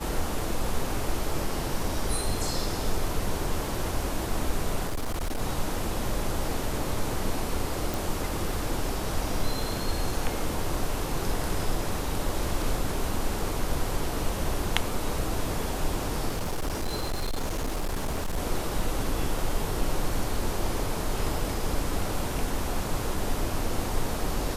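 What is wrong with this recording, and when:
4.86–5.42 s: clipped -25.5 dBFS
7.94 s: pop
16.28–18.38 s: clipped -25 dBFS

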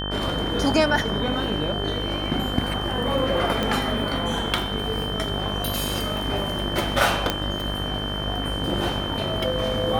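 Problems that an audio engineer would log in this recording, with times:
buzz 50 Hz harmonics 37 -30 dBFS
whine 3.1 kHz -30 dBFS
3.63 s: pop -10 dBFS
7.30 s: pop -6 dBFS

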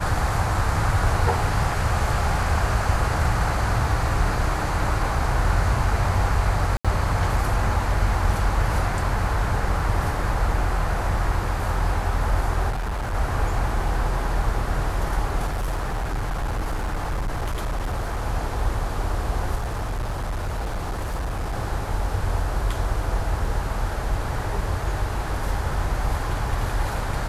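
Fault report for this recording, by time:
6.77–6.85 s: dropout 76 ms
12.70–13.15 s: clipped -23.5 dBFS
15.46–18.24 s: clipped -22 dBFS
19.55–21.54 s: clipped -23 dBFS

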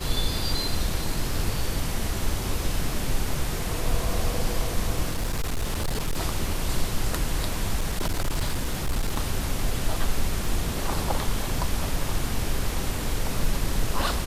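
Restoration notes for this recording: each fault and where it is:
5.11–6.18 s: clipped -22 dBFS
7.77–9.19 s: clipped -20.5 dBFS
10.45 s: dropout 2.2 ms

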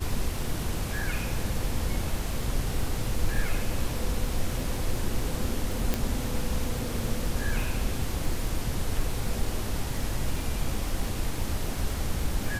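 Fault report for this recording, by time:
crackle 52 per s -34 dBFS
5.94 s: pop -10 dBFS

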